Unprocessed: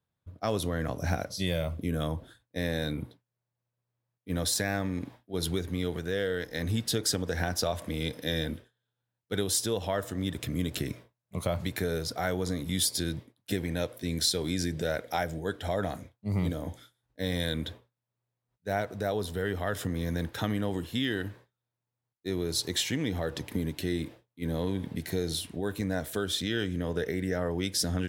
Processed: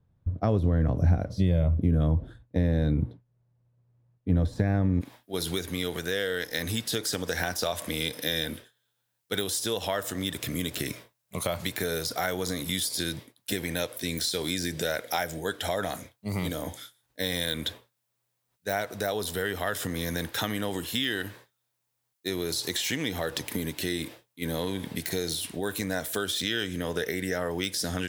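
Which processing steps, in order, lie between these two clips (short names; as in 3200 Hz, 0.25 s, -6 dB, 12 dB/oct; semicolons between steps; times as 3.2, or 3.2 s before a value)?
de-esser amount 85%; tilt -4 dB/oct, from 5 s +2.5 dB/oct; compressor 2:1, threshold -34 dBFS, peak gain reduction 12 dB; gain +6.5 dB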